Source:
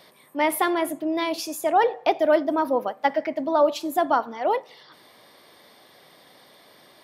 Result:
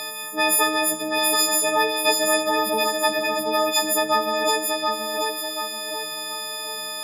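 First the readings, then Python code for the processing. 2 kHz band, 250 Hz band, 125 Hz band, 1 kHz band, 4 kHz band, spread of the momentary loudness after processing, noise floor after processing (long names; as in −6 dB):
+8.0 dB, −1.5 dB, can't be measured, +0.5 dB, +14.5 dB, 10 LU, −31 dBFS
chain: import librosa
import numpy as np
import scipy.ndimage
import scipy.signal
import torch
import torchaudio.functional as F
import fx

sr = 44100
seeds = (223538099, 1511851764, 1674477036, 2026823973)

y = fx.freq_snap(x, sr, grid_st=6)
y = fx.low_shelf(y, sr, hz=390.0, db=-11.5)
y = fx.echo_feedback(y, sr, ms=731, feedback_pct=25, wet_db=-7)
y = fx.spectral_comp(y, sr, ratio=2.0)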